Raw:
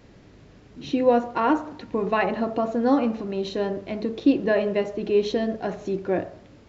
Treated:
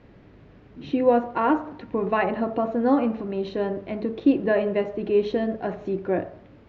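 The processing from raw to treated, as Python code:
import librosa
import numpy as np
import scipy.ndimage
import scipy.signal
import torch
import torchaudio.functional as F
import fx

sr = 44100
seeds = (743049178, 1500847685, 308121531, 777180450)

y = scipy.signal.sosfilt(scipy.signal.butter(2, 2700.0, 'lowpass', fs=sr, output='sos'), x)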